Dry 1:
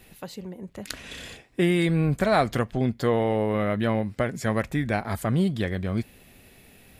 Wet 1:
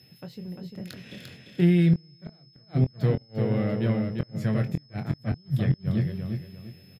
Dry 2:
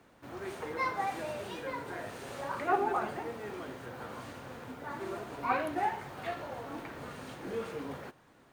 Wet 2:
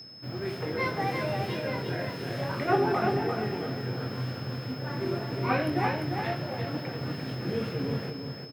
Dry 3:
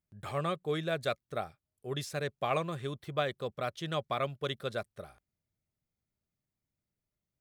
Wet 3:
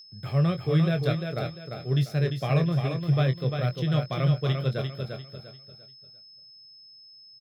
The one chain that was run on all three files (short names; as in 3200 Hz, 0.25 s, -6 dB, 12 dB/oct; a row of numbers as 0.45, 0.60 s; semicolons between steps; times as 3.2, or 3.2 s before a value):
one diode to ground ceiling -14 dBFS; HPF 96 Hz 24 dB/oct; on a send: feedback echo 0.347 s, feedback 34%, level -5 dB; on the sum: dynamic EQ 150 Hz, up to +7 dB, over -45 dBFS, Q 4.7; in parallel at -11 dB: crossover distortion -41 dBFS; on the sum: graphic EQ 125/1000/8000 Hz +12/-8/-12 dB; flipped gate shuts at -7 dBFS, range -37 dB; whine 5200 Hz -47 dBFS; doubler 23 ms -8.5 dB; normalise peaks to -12 dBFS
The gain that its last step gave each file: -6.5, +5.0, +2.5 dB